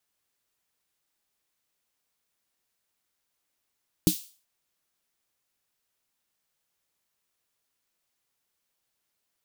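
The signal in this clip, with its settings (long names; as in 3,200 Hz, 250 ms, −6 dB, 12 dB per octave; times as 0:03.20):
synth snare length 0.38 s, tones 180 Hz, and 310 Hz, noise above 3,200 Hz, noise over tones −9 dB, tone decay 0.10 s, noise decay 0.40 s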